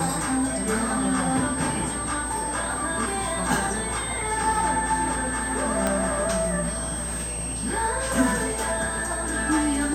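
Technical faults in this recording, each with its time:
whine 8.3 kHz -30 dBFS
5.87 s: pop -10 dBFS

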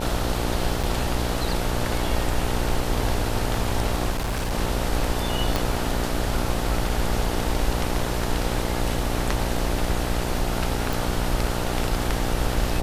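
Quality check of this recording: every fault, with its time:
buzz 60 Hz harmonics 15 -28 dBFS
0.83–0.84 s: dropout 6.3 ms
4.10–4.53 s: clipped -22 dBFS
5.56 s: pop
10.93 s: pop

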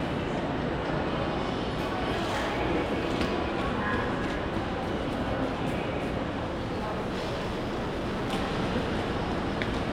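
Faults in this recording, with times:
2.11–2.61 s: clipped -25.5 dBFS
6.48–8.34 s: clipped -27.5 dBFS

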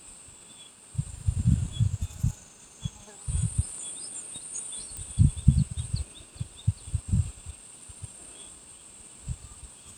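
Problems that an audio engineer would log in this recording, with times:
4.97 s: pop -22 dBFS

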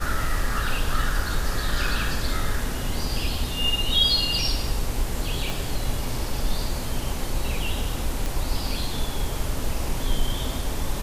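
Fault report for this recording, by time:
5.50 s: pop
8.26 s: pop

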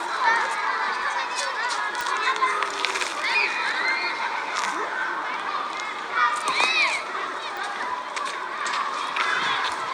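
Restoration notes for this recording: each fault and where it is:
2.01 s: pop
7.57 s: pop

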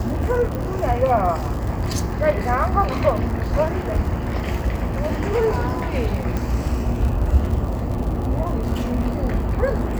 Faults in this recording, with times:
crackle 89 per s -27 dBFS
0.55 s: pop
6.37 s: pop

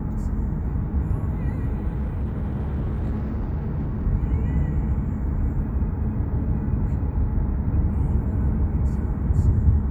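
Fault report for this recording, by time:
1.95–4.05 s: clipped -21.5 dBFS

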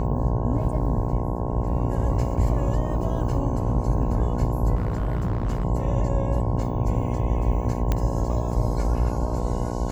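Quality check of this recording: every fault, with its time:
buzz 60 Hz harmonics 18 -28 dBFS
4.75–5.65 s: clipped -20.5 dBFS
7.92 s: pop -10 dBFS

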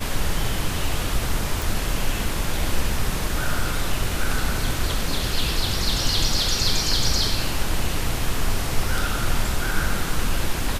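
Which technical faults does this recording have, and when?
1.62 s: pop

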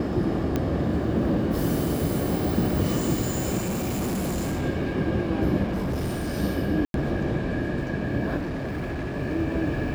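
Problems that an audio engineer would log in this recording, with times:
0.56 s: pop -12 dBFS
3.57–4.65 s: clipped -24 dBFS
5.63–6.34 s: clipped -24 dBFS
6.85–6.94 s: dropout 92 ms
8.37–9.16 s: clipped -26.5 dBFS

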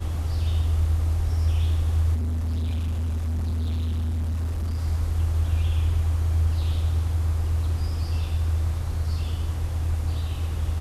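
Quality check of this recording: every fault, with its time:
2.14–4.81 s: clipped -23.5 dBFS

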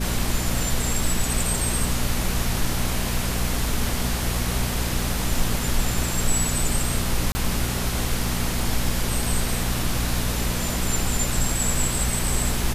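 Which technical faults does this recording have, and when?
hum 60 Hz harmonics 4 -28 dBFS
7.32–7.35 s: dropout 30 ms

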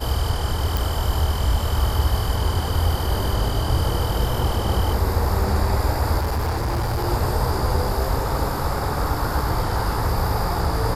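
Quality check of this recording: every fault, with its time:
0.77 s: pop
6.18–7.05 s: clipped -19.5 dBFS

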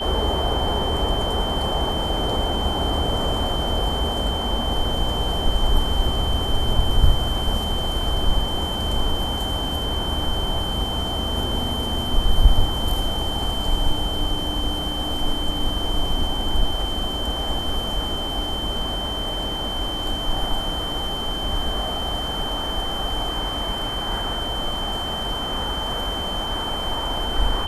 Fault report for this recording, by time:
whine 3.1 kHz -27 dBFS

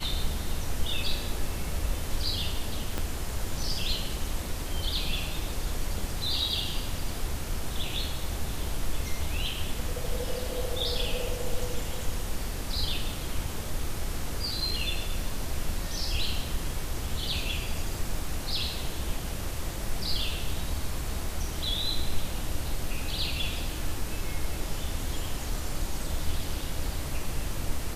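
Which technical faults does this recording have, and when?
2.98 s: pop -15 dBFS

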